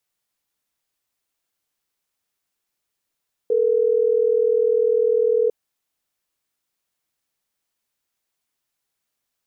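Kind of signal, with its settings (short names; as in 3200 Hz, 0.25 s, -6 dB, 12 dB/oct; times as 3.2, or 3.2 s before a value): call progress tone ringback tone, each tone -18 dBFS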